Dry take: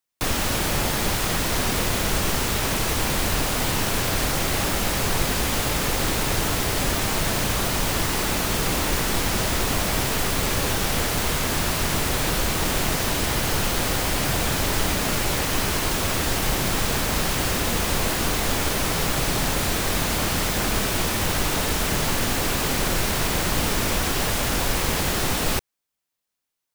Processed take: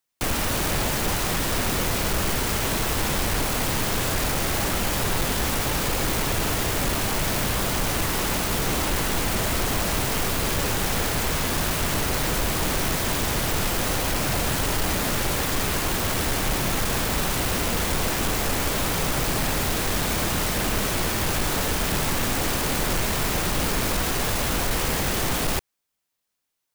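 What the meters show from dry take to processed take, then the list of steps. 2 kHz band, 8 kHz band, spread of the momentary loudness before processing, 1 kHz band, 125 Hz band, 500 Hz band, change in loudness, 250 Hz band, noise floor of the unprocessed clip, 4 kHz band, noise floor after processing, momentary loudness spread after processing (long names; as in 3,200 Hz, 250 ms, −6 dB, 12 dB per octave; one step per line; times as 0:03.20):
−1.5 dB, −1.5 dB, 0 LU, −1.0 dB, −1.0 dB, −1.0 dB, −1.0 dB, −1.0 dB, −82 dBFS, −2.0 dB, −80 dBFS, 0 LU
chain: phase distortion by the signal itself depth 0.34 ms
soft clipping −19.5 dBFS, distortion −15 dB
level +2.5 dB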